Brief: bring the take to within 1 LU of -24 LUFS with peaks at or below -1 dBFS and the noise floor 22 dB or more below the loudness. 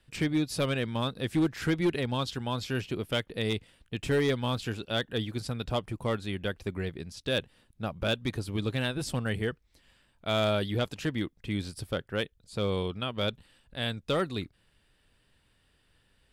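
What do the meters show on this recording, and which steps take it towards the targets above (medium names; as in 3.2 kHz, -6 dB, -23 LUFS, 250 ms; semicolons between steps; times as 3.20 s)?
clipped samples 0.6%; clipping level -20.0 dBFS; loudness -31.5 LUFS; peak level -20.0 dBFS; loudness target -24.0 LUFS
-> clip repair -20 dBFS; trim +7.5 dB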